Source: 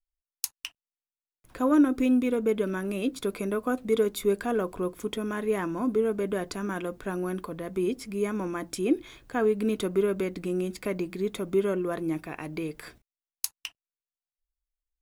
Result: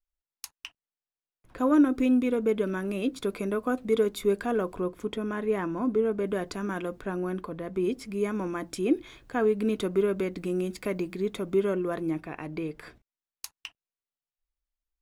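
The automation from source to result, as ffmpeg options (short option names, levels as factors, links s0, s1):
-af "asetnsamples=n=441:p=0,asendcmd='1.58 lowpass f 6300;4.81 lowpass f 2800;6.24 lowpass f 6200;7.02 lowpass f 2900;7.84 lowpass f 6500;10.38 lowpass f 12000;11.14 lowpass f 6100;12.11 lowpass f 2700',lowpass=f=2400:p=1"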